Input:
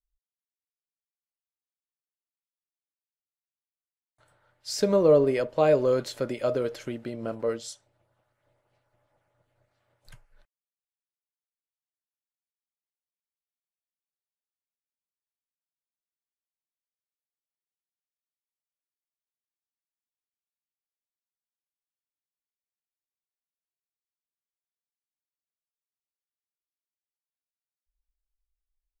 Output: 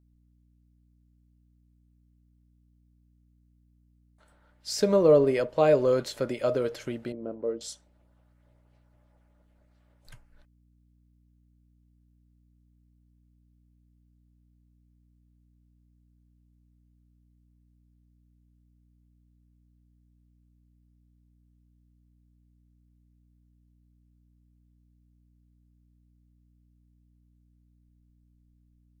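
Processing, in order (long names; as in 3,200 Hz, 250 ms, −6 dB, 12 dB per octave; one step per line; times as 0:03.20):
0:07.12–0:07.61: resonant band-pass 340 Hz, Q 1.3
mains hum 60 Hz, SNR 29 dB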